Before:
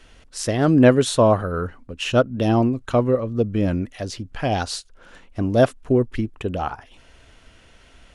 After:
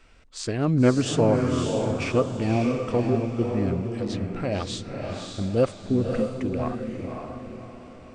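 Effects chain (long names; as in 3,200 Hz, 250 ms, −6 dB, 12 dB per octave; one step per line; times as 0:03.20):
formants moved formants −3 semitones
feedback delay with all-pass diffusion 568 ms, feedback 41%, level −4 dB
level −5.5 dB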